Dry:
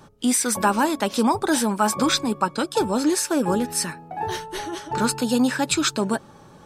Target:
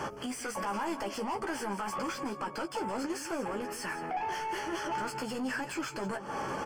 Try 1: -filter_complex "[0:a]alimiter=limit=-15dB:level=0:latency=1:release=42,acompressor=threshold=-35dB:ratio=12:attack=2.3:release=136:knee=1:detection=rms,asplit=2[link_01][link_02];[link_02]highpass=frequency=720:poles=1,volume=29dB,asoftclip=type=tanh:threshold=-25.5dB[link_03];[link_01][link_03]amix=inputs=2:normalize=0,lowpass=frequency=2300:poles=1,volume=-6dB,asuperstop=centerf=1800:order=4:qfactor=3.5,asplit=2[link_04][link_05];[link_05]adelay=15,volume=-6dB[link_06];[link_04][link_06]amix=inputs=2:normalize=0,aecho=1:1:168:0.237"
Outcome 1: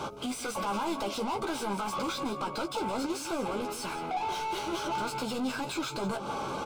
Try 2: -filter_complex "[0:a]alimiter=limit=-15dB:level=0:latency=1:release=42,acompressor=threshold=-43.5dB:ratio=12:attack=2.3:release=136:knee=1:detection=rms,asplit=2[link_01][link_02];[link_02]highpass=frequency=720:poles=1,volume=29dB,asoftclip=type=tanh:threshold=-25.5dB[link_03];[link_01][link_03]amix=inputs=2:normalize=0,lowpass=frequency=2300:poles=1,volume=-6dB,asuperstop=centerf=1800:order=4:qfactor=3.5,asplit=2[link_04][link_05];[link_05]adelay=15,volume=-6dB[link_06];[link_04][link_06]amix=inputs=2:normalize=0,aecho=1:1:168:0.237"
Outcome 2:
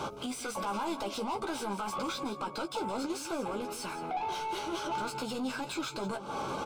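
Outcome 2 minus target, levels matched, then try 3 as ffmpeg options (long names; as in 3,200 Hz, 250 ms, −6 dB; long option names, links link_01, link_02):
2,000 Hz band −3.5 dB
-filter_complex "[0:a]alimiter=limit=-15dB:level=0:latency=1:release=42,acompressor=threshold=-43.5dB:ratio=12:attack=2.3:release=136:knee=1:detection=rms,asplit=2[link_01][link_02];[link_02]highpass=frequency=720:poles=1,volume=29dB,asoftclip=type=tanh:threshold=-25.5dB[link_03];[link_01][link_03]amix=inputs=2:normalize=0,lowpass=frequency=2300:poles=1,volume=-6dB,asuperstop=centerf=3800:order=4:qfactor=3.5,asplit=2[link_04][link_05];[link_05]adelay=15,volume=-6dB[link_06];[link_04][link_06]amix=inputs=2:normalize=0,aecho=1:1:168:0.237"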